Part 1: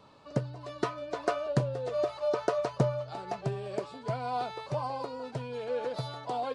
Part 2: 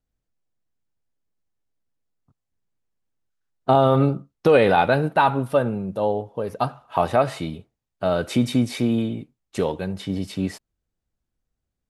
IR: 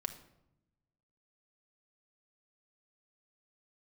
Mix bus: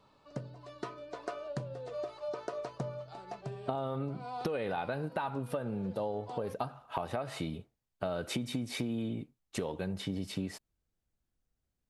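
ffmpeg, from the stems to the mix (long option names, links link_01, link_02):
-filter_complex "[0:a]bandreject=frequency=55.42:width_type=h:width=4,bandreject=frequency=110.84:width_type=h:width=4,bandreject=frequency=166.26:width_type=h:width=4,bandreject=frequency=221.68:width_type=h:width=4,bandreject=frequency=277.1:width_type=h:width=4,bandreject=frequency=332.52:width_type=h:width=4,bandreject=frequency=387.94:width_type=h:width=4,bandreject=frequency=443.36:width_type=h:width=4,bandreject=frequency=498.78:width_type=h:width=4,bandreject=frequency=554.2:width_type=h:width=4,bandreject=frequency=609.62:width_type=h:width=4,bandreject=frequency=665.04:width_type=h:width=4,volume=-7.5dB[link_01];[1:a]acompressor=threshold=-22dB:ratio=6,volume=-3dB,asplit=2[link_02][link_03];[link_03]apad=whole_len=288693[link_04];[link_01][link_04]sidechaincompress=threshold=-34dB:ratio=8:attack=6.6:release=163[link_05];[link_05][link_02]amix=inputs=2:normalize=0,acompressor=threshold=-34dB:ratio=2.5"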